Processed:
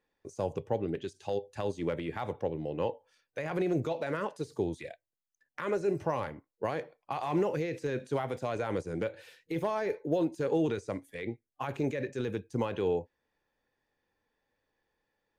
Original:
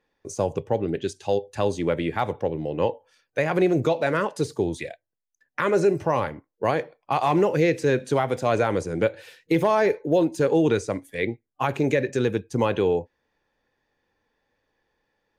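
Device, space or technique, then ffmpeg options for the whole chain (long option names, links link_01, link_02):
de-esser from a sidechain: -filter_complex "[0:a]asplit=2[link_01][link_02];[link_02]highpass=6800,apad=whole_len=678360[link_03];[link_01][link_03]sidechaincompress=threshold=-53dB:ratio=3:attack=2.8:release=35,volume=-7dB"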